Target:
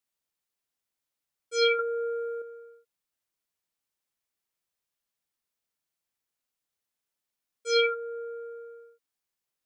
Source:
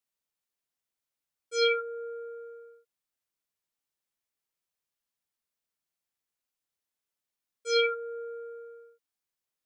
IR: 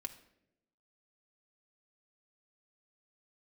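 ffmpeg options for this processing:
-filter_complex "[0:a]asettb=1/sr,asplit=3[a][b][c];[a]atrim=end=1.794[d];[b]atrim=start=1.79:end=2.42,asetpts=PTS-STARTPTS,afade=t=in:d=0.004:c=qsin,afade=t=out:st=0.626:d=0.004:c=qsin,acontrast=53[e];[c]atrim=start=2.416[f];[d][e]acrossfade=d=0.004:c1=hsin:c2=qsin[g];[g][f]acrossfade=d=0.004:c1=qsin:c2=hsin,volume=1.5dB"

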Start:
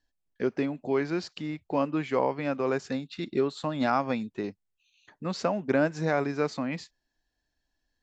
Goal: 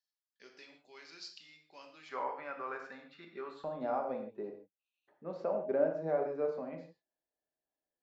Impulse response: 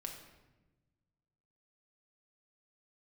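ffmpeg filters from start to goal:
-filter_complex "[0:a]asetnsamples=n=441:p=0,asendcmd='2.09 bandpass f 1300;3.64 bandpass f 550',bandpass=f=5k:t=q:w=1.8:csg=0[a];[1:a]atrim=start_sample=2205,afade=t=out:st=0.21:d=0.01,atrim=end_sample=9702[b];[a][b]afir=irnorm=-1:irlink=0,volume=-1dB"

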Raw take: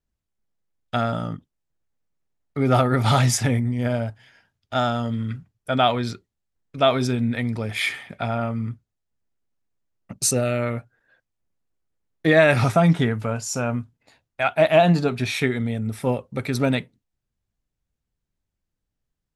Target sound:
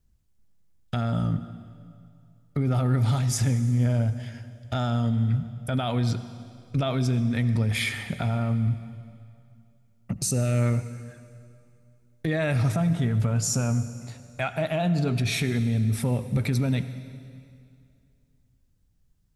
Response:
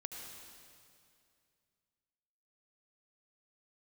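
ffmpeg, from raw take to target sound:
-filter_complex "[0:a]acompressor=threshold=-29dB:ratio=4,bass=f=250:g=12,treble=f=4k:g=5,alimiter=limit=-21.5dB:level=0:latency=1:release=24,asplit=2[a][b];[1:a]atrim=start_sample=2205[c];[b][c]afir=irnorm=-1:irlink=0,volume=-4dB[d];[a][d]amix=inputs=2:normalize=0,volume=1dB"

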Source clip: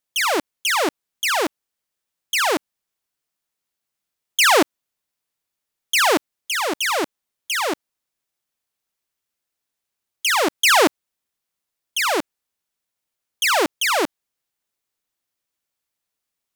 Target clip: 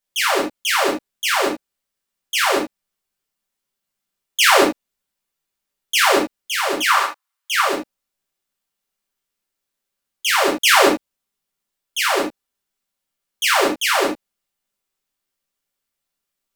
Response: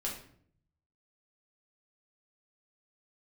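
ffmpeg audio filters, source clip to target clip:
-filter_complex "[0:a]asettb=1/sr,asplit=3[a][b][c];[a]atrim=end=6.744[d];[b]atrim=start=6.74:end=7.61,asetpts=PTS-STARTPTS,afade=t=in:d=0.004:c=qsin,afade=t=out:st=0.866:d=0.004:c=qsin,highpass=f=1.1k:t=q:w=2.7[e];[c]atrim=start=7.606[f];[d][e]acrossfade=d=0.004:c1=hsin:c2=qsin[g];[g][f]acrossfade=d=0.004:c1=qsin:c2=hsin[h];[1:a]atrim=start_sample=2205,atrim=end_sample=4410[i];[h][i]afir=irnorm=-1:irlink=0"

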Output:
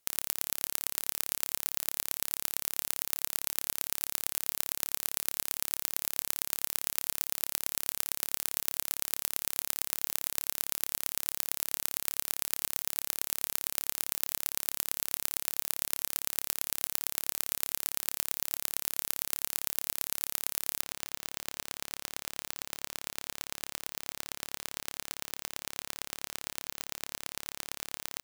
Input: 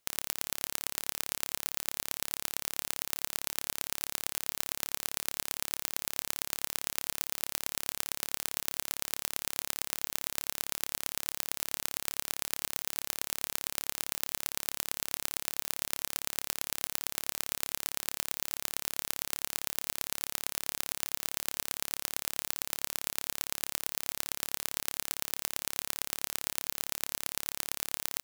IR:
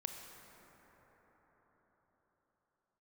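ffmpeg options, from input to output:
-af "asetnsamples=n=441:p=0,asendcmd='20.81 equalizer g -5',equalizer=f=14k:w=0.45:g=6.5,volume=-2dB"

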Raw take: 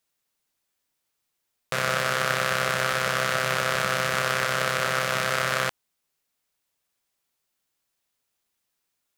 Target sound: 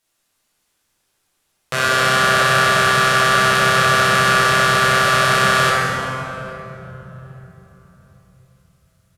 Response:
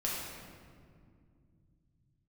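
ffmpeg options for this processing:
-filter_complex "[0:a]asplit=2[a][b];[b]alimiter=limit=-14.5dB:level=0:latency=1,volume=1.5dB[c];[a][c]amix=inputs=2:normalize=0,asplit=2[d][e];[e]adelay=813,lowpass=f=1.4k:p=1,volume=-19dB,asplit=2[f][g];[g]adelay=813,lowpass=f=1.4k:p=1,volume=0.36,asplit=2[h][i];[i]adelay=813,lowpass=f=1.4k:p=1,volume=0.36[j];[d][f][h][j]amix=inputs=4:normalize=0[k];[1:a]atrim=start_sample=2205,asetrate=25578,aresample=44100[l];[k][l]afir=irnorm=-1:irlink=0,volume=-2.5dB"

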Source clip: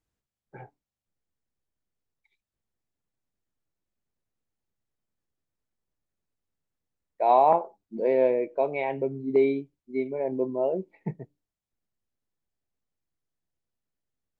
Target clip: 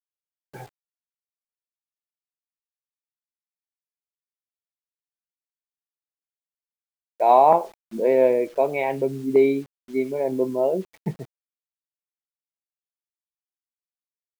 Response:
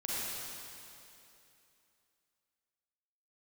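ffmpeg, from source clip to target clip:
-af "acrusher=bits=8:mix=0:aa=0.000001,volume=4.5dB"

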